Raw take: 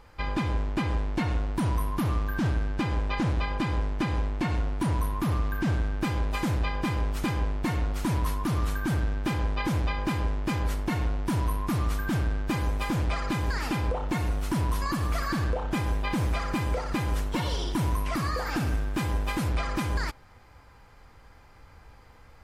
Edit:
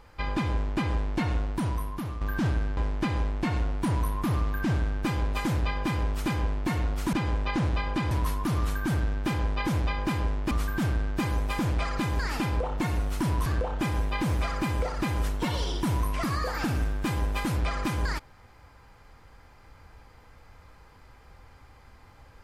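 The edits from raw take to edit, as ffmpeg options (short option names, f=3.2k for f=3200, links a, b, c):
-filter_complex "[0:a]asplit=7[a][b][c][d][e][f][g];[a]atrim=end=2.21,asetpts=PTS-STARTPTS,afade=t=out:st=1.4:d=0.81:silence=0.316228[h];[b]atrim=start=2.21:end=2.772,asetpts=PTS-STARTPTS,afade=t=in:d=0.004:c=hsin:silence=0.316228[i];[c]atrim=start=3.748:end=8.112[j];[d]atrim=start=2.768:end=3.752[k];[e]atrim=start=8.108:end=10.512[l];[f]atrim=start=11.818:end=14.772[m];[g]atrim=start=15.378[n];[h][i]concat=n=2:v=0:a=1[o];[o][j]acrossfade=d=0.004:c1=hsin:c2=hsin[p];[p][k]acrossfade=d=0.004:c1=hsin:c2=hsin[q];[q][l]acrossfade=d=0.004:c1=hsin:c2=hsin[r];[r][m]acrossfade=d=0.004:c1=hsin:c2=hsin[s];[s][n]acrossfade=d=0.004:c1=hsin:c2=hsin"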